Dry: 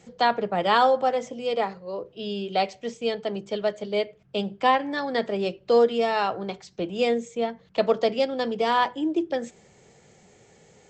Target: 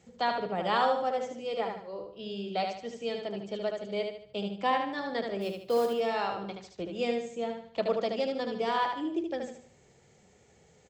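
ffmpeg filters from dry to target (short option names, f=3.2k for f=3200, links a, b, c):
-filter_complex "[0:a]equalizer=f=70:w=1.7:g=7.5,asplit=3[a][b][c];[a]afade=t=out:st=5.4:d=0.02[d];[b]acrusher=bits=6:mode=log:mix=0:aa=0.000001,afade=t=in:st=5.4:d=0.02,afade=t=out:st=5.86:d=0.02[e];[c]afade=t=in:st=5.86:d=0.02[f];[d][e][f]amix=inputs=3:normalize=0,aecho=1:1:75|150|225|300|375:0.562|0.214|0.0812|0.0309|0.0117,volume=-8dB"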